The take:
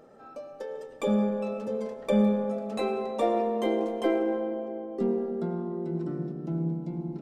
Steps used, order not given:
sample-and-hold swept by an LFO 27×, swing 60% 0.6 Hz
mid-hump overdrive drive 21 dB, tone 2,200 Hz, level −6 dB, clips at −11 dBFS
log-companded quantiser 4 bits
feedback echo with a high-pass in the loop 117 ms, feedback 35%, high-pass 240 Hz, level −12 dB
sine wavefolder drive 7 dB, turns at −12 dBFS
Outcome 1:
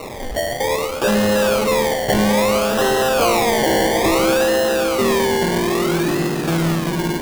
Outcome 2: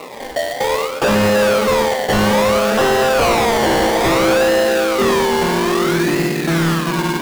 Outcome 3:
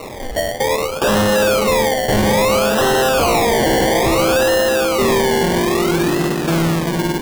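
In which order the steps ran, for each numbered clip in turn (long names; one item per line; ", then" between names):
log-companded quantiser, then sine wavefolder, then mid-hump overdrive, then sample-and-hold swept by an LFO, then feedback echo with a high-pass in the loop
sample-and-hold swept by an LFO, then mid-hump overdrive, then sine wavefolder, then log-companded quantiser, then feedback echo with a high-pass in the loop
feedback echo with a high-pass in the loop, then log-companded quantiser, then mid-hump overdrive, then sine wavefolder, then sample-and-hold swept by an LFO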